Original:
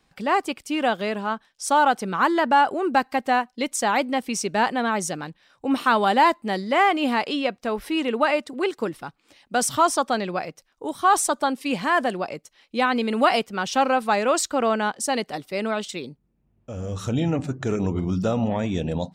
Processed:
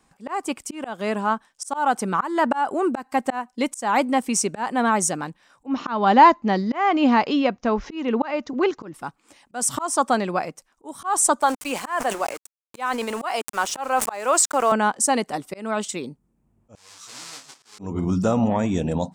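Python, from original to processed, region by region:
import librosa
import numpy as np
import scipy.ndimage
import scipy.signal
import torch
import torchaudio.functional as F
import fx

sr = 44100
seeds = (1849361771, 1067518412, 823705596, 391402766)

y = fx.chain(x, sr, fx.steep_lowpass(hz=6700.0, slope=96),
    fx.low_shelf(hz=160.0, db=9.5), at=(5.66, 8.94))
y = fx.chain(y, sr, fx.highpass(hz=440.0, slope=12),
    fx.sample_gate(floor_db=-36.5),
    fx.sustainer(db_per_s=140.0), at=(11.41, 14.72))
y = fx.chain(y, sr, fx.halfwave_hold(),
    fx.bandpass_q(hz=4600.0, q=2.1),
    fx.detune_double(cents=15), at=(16.75, 17.79))
y = fx.graphic_eq(y, sr, hz=(250, 1000, 4000, 8000), db=(4, 6, -5, 10))
y = fx.auto_swell(y, sr, attack_ms=256.0)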